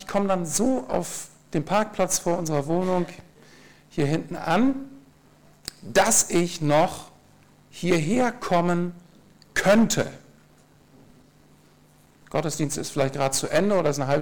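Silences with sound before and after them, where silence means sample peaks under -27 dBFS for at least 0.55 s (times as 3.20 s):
3.10–3.98 s
4.82–5.68 s
7.00–7.79 s
8.90–9.56 s
10.09–12.32 s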